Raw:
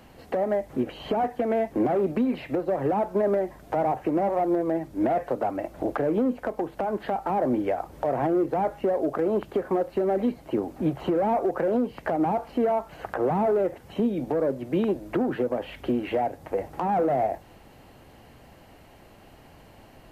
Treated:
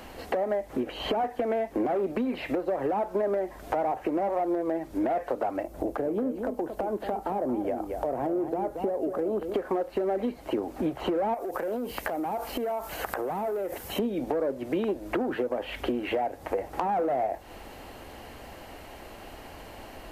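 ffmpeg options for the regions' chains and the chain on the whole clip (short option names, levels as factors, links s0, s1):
-filter_complex "[0:a]asettb=1/sr,asplit=3[s0][s1][s2];[s0]atrim=end=5.634[s3];[s1]atrim=start=5.63:end=9.54,asetpts=PTS-STARTPTS,afade=t=in:d=0.004:c=qsin,afade=t=out:st=3.906:d=0.004:c=qsin,equalizer=f=2000:w=0.36:g=-10.5,aecho=1:1:228:0.355,atrim=end_sample=172431[s4];[s2]atrim=start=9.536[s5];[s3][s4]acrossfade=d=0.004:c1=hsin:c2=qsin[s6];[s6][s5]acrossfade=d=0.004:c1=qsin:c2=hsin,asettb=1/sr,asplit=3[s7][s8][s9];[s7]atrim=end=11.344[s10];[s8]atrim=start=11.34:end=13.99,asetpts=PTS-STARTPTS,afade=t=in:d=0.004:c=qsin,afade=t=out:st=2.646:d=0.004:c=qsin,aemphasis=mode=production:type=50fm,acompressor=threshold=0.0316:ratio=12:attack=3.2:release=140:knee=1:detection=peak[s11];[s9]atrim=start=13.986[s12];[s10][s11]acrossfade=d=0.004:c1=hsin:c2=qsin[s13];[s13][s12]acrossfade=d=0.004:c1=qsin:c2=hsin,equalizer=f=140:w=1.1:g=-10.5,acompressor=threshold=0.0141:ratio=3,volume=2.66"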